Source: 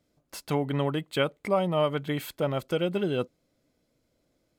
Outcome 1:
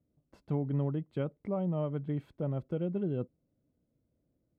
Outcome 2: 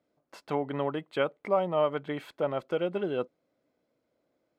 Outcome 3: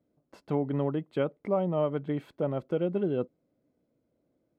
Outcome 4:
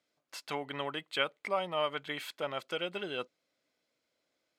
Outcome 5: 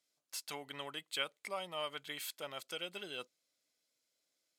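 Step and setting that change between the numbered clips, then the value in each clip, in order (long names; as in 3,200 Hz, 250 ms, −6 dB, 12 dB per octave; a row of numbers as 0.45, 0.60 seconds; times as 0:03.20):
resonant band-pass, frequency: 100, 770, 290, 2,500, 7,100 Hertz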